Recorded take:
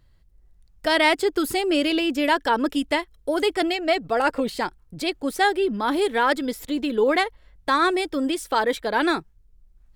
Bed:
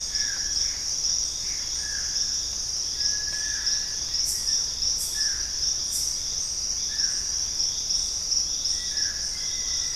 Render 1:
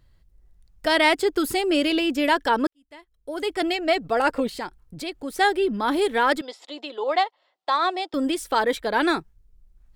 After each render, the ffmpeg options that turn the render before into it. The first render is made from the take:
-filter_complex "[0:a]asettb=1/sr,asplit=3[a][b][c];[a]atrim=end=4.474[d];[b]atrim=start=4.47:end=5.38,asetpts=PTS-STARTPTS,afade=t=in:d=0.004:c=qsin,afade=t=out:st=0.906:d=0.004:c=qsin,acompressor=threshold=-37dB:ratio=1.5:attack=3.2:release=140:knee=1:detection=peak[e];[c]atrim=start=5.376[f];[d][e]acrossfade=d=0.004:c1=hsin:c2=qsin[g];[g][f]acrossfade=d=0.004:c1=qsin:c2=hsin,asettb=1/sr,asplit=3[h][i][j];[h]atrim=end=6.414[k];[i]atrim=start=6.41:end=8.14,asetpts=PTS-STARTPTS,afade=t=in:d=0.004:c=qsin,afade=t=out:st=1.726:d=0.004:c=qsin,highpass=f=440:w=0.5412,highpass=f=440:w=1.3066,equalizer=f=460:t=q:w=4:g=-9,equalizer=f=750:t=q:w=4:g=5,equalizer=f=1.6k:t=q:w=4:g=-9,equalizer=f=2.3k:t=q:w=4:g=-6,equalizer=f=6.1k:t=q:w=4:g=-7,lowpass=f=6.3k:w=0.5412,lowpass=f=6.3k:w=1.3066[l];[j]atrim=start=8.136[m];[k][l]acrossfade=d=0.004:c1=hsin:c2=qsin[n];[n][m]acrossfade=d=0.004:c1=qsin:c2=hsin,asplit=2[o][p];[o]atrim=end=2.67,asetpts=PTS-STARTPTS,afade=t=out:st=2.666:d=0.004:c=hsin[q];[p]atrim=start=2.67,asetpts=PTS-STARTPTS,afade=t=in:d=1.05:c=qua[r];[q][r]concat=n=2:v=0:a=1"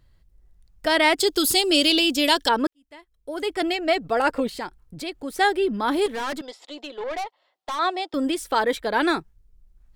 -filter_complex "[0:a]asettb=1/sr,asplit=3[a][b][c];[a]atrim=end=1.204[d];[b]atrim=start=1.2:end=2.49,asetpts=PTS-STARTPTS,afade=t=in:d=0.004:c=qsin,afade=t=out:st=1.286:d=0.004:c=qsin,highshelf=f=2.7k:t=q:w=1.5:g=10[e];[c]atrim=start=2.486[f];[d][e]acrossfade=d=0.004:c1=hsin:c2=qsin[g];[g][f]acrossfade=d=0.004:c1=qsin:c2=hsin,asettb=1/sr,asplit=3[h][i][j];[h]atrim=end=6.064[k];[i]atrim=start=6.06:end=7.79,asetpts=PTS-STARTPTS,afade=t=in:d=0.004:c=qsin,afade=t=out:st=1.726:d=0.004:c=qsin,aeval=exprs='(tanh(20*val(0)+0.25)-tanh(0.25))/20':c=same[l];[j]atrim=start=7.786[m];[k][l]acrossfade=d=0.004:c1=hsin:c2=qsin[n];[n][m]acrossfade=d=0.004:c1=qsin:c2=hsin"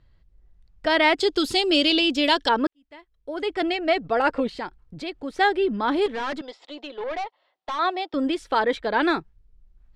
-af "lowpass=4.2k"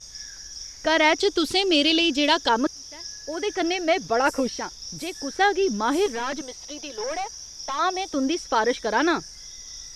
-filter_complex "[1:a]volume=-12.5dB[a];[0:a][a]amix=inputs=2:normalize=0"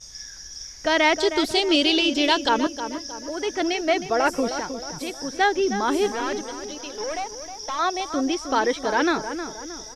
-filter_complex "[0:a]asplit=2[a][b];[b]adelay=313,lowpass=f=1.9k:p=1,volume=-9dB,asplit=2[c][d];[d]adelay=313,lowpass=f=1.9k:p=1,volume=0.48,asplit=2[e][f];[f]adelay=313,lowpass=f=1.9k:p=1,volume=0.48,asplit=2[g][h];[h]adelay=313,lowpass=f=1.9k:p=1,volume=0.48,asplit=2[i][j];[j]adelay=313,lowpass=f=1.9k:p=1,volume=0.48[k];[a][c][e][g][i][k]amix=inputs=6:normalize=0"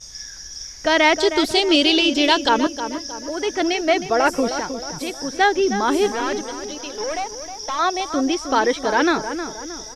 -af "volume=3.5dB"

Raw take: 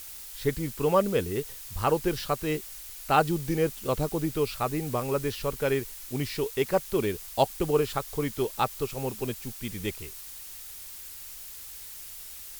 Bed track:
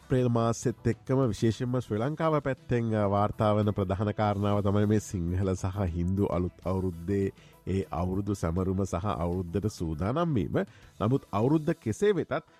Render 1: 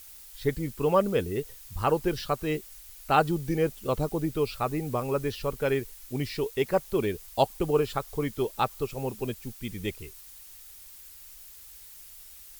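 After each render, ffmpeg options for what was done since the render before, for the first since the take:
-af "afftdn=nr=7:nf=-43"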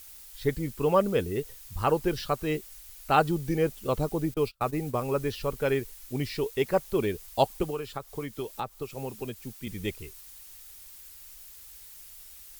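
-filter_complex "[0:a]asettb=1/sr,asplit=3[a][b][c];[a]atrim=end=4.344[d];[b]atrim=start=4.34:end=5.06,asetpts=PTS-STARTPTS,afade=t=in:d=0.004:c=qsin,afade=t=out:st=0.716:d=0.004:c=qsin,agate=range=-33dB:threshold=-35dB:ratio=16:release=100:detection=peak[e];[c]atrim=start=5.056[f];[d][e]acrossfade=d=0.004:c1=hsin:c2=qsin[g];[g][f]acrossfade=d=0.004:c1=qsin:c2=hsin,asettb=1/sr,asplit=3[h][i][j];[h]atrim=end=7.634[k];[i]atrim=start=7.63:end=9.67,asetpts=PTS-STARTPTS,afade=t=in:d=0.004:c=qsin,afade=t=out:st=2.036:d=0.004:c=qsin,acrossover=split=91|1200[l][m][n];[l]acompressor=threshold=-54dB:ratio=4[o];[m]acompressor=threshold=-33dB:ratio=4[p];[n]acompressor=threshold=-43dB:ratio=4[q];[o][p][q]amix=inputs=3:normalize=0[r];[j]atrim=start=9.666[s];[k][r]acrossfade=d=0.004:c1=hsin:c2=qsin[t];[t][s]acrossfade=d=0.004:c1=qsin:c2=hsin"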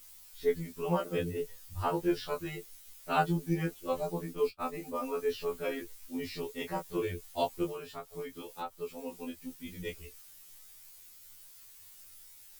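-af "flanger=delay=15.5:depth=5:speed=0.21,afftfilt=real='re*2*eq(mod(b,4),0)':imag='im*2*eq(mod(b,4),0)':win_size=2048:overlap=0.75"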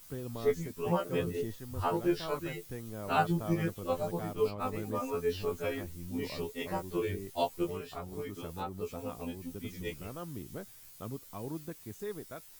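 -filter_complex "[1:a]volume=-15dB[a];[0:a][a]amix=inputs=2:normalize=0"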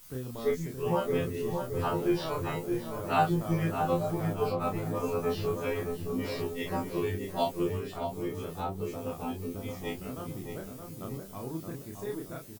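-filter_complex "[0:a]asplit=2[a][b];[b]adelay=31,volume=-3dB[c];[a][c]amix=inputs=2:normalize=0,asplit=2[d][e];[e]adelay=620,lowpass=f=1.4k:p=1,volume=-4.5dB,asplit=2[f][g];[g]adelay=620,lowpass=f=1.4k:p=1,volume=0.46,asplit=2[h][i];[i]adelay=620,lowpass=f=1.4k:p=1,volume=0.46,asplit=2[j][k];[k]adelay=620,lowpass=f=1.4k:p=1,volume=0.46,asplit=2[l][m];[m]adelay=620,lowpass=f=1.4k:p=1,volume=0.46,asplit=2[n][o];[o]adelay=620,lowpass=f=1.4k:p=1,volume=0.46[p];[d][f][h][j][l][n][p]amix=inputs=7:normalize=0"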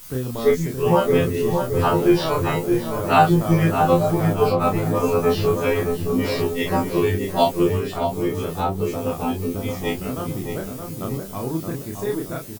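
-af "volume=11.5dB,alimiter=limit=-3dB:level=0:latency=1"

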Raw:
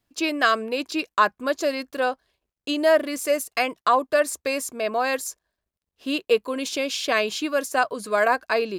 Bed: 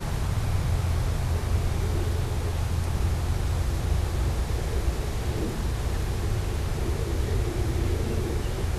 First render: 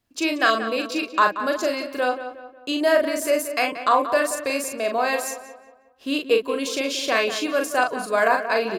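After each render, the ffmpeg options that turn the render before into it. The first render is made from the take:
-filter_complex "[0:a]asplit=2[a][b];[b]adelay=40,volume=-5dB[c];[a][c]amix=inputs=2:normalize=0,asplit=2[d][e];[e]adelay=181,lowpass=f=2.6k:p=1,volume=-10.5dB,asplit=2[f][g];[g]adelay=181,lowpass=f=2.6k:p=1,volume=0.43,asplit=2[h][i];[i]adelay=181,lowpass=f=2.6k:p=1,volume=0.43,asplit=2[j][k];[k]adelay=181,lowpass=f=2.6k:p=1,volume=0.43,asplit=2[l][m];[m]adelay=181,lowpass=f=2.6k:p=1,volume=0.43[n];[d][f][h][j][l][n]amix=inputs=6:normalize=0"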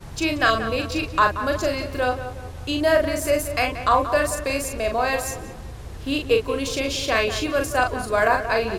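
-filter_complex "[1:a]volume=-9dB[a];[0:a][a]amix=inputs=2:normalize=0"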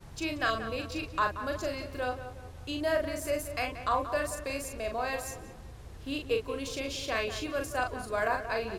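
-af "volume=-10.5dB"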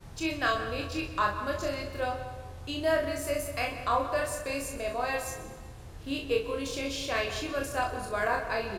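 -filter_complex "[0:a]asplit=2[a][b];[b]adelay=25,volume=-4dB[c];[a][c]amix=inputs=2:normalize=0,aecho=1:1:127|254|381|508|635:0.178|0.0978|0.0538|0.0296|0.0163"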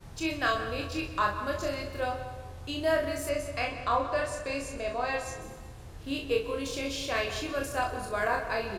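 -filter_complex "[0:a]asettb=1/sr,asplit=3[a][b][c];[a]atrim=end=3.294[d];[b]atrim=start=3.29:end=5.42,asetpts=PTS-STARTPTS,afade=t=in:d=0.004:c=qsin,afade=t=out:st=2.126:d=0.004:c=qsin,lowpass=7.1k[e];[c]atrim=start=5.416[f];[d][e]acrossfade=d=0.004:c1=hsin:c2=qsin[g];[g][f]acrossfade=d=0.004:c1=qsin:c2=hsin"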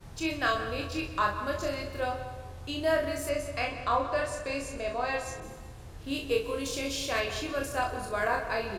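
-filter_complex "[0:a]asettb=1/sr,asplit=3[a][b][c];[a]atrim=end=5.404[d];[b]atrim=start=5.4:end=7.2,asetpts=PTS-STARTPTS,afade=t=in:d=0.004:c=qsin,afade=t=out:st=1.796:d=0.004:c=qsin,adynamicequalizer=threshold=0.00355:dfrequency=5100:dqfactor=0.7:tfrequency=5100:tqfactor=0.7:attack=5:release=100:ratio=0.375:range=2.5:mode=boostabove:tftype=highshelf[e];[c]atrim=start=7.196[f];[d][e]acrossfade=d=0.004:c1=hsin:c2=qsin[g];[g][f]acrossfade=d=0.004:c1=qsin:c2=hsin"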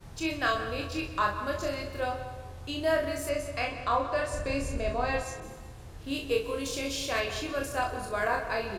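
-filter_complex "[0:a]asettb=1/sr,asplit=3[a][b][c];[a]atrim=end=4.334[d];[b]atrim=start=4.33:end=5.23,asetpts=PTS-STARTPTS,afade=t=in:d=0.004:c=qsin,afade=t=out:st=0.896:d=0.004:c=qsin,lowshelf=f=230:g=11.5[e];[c]atrim=start=5.226[f];[d][e]acrossfade=d=0.004:c1=hsin:c2=qsin[g];[g][f]acrossfade=d=0.004:c1=qsin:c2=hsin"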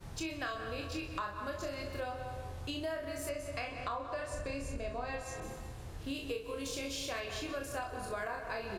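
-af "acompressor=threshold=-36dB:ratio=6"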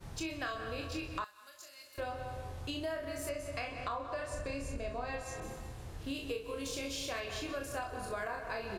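-filter_complex "[0:a]asettb=1/sr,asplit=3[a][b][c];[a]atrim=end=1.244[d];[b]atrim=start=1.24:end=1.98,asetpts=PTS-STARTPTS,afade=t=in:d=0.004:c=qsin,afade=t=out:st=0.736:d=0.004:c=qsin,aderivative[e];[c]atrim=start=1.976[f];[d][e]acrossfade=d=0.004:c1=hsin:c2=qsin[g];[g][f]acrossfade=d=0.004:c1=qsin:c2=hsin"

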